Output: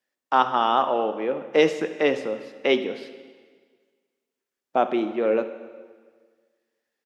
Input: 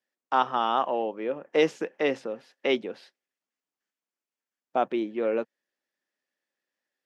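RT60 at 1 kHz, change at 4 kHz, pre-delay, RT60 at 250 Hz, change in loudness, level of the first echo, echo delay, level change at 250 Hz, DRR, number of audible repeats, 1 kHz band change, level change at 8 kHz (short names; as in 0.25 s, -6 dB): 1.6 s, +4.5 dB, 5 ms, 1.7 s, +4.0 dB, -18.5 dB, 73 ms, +4.5 dB, 9.5 dB, 1, +4.5 dB, n/a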